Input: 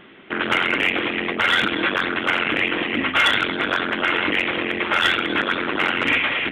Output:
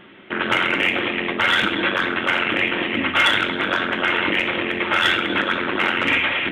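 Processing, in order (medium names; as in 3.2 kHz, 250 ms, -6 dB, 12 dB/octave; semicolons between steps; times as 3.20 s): two-slope reverb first 0.43 s, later 1.6 s, from -25 dB, DRR 7.5 dB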